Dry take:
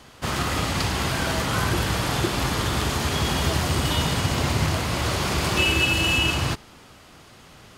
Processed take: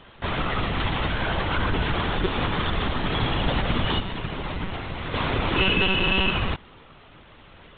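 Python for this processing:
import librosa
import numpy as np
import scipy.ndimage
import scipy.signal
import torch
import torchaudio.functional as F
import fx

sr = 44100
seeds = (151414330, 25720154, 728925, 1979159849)

y = fx.comb_fb(x, sr, f0_hz=170.0, decay_s=0.38, harmonics='all', damping=0.0, mix_pct=60, at=(3.99, 5.14))
y = fx.lpc_monotone(y, sr, seeds[0], pitch_hz=190.0, order=16)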